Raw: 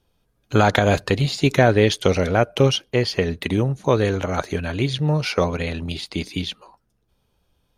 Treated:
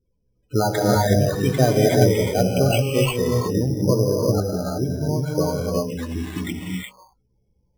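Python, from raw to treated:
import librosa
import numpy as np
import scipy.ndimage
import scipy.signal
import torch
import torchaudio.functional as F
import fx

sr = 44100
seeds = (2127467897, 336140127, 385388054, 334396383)

y = fx.lowpass(x, sr, hz=1500.0, slope=24, at=(3.37, 5.73))
y = fx.spec_topn(y, sr, count=16)
y = fx.doubler(y, sr, ms=16.0, db=-10.5)
y = fx.rev_gated(y, sr, seeds[0], gate_ms=400, shape='rising', drr_db=-2.5)
y = np.repeat(y[::8], 8)[:len(y)]
y = y * 10.0 ** (-3.5 / 20.0)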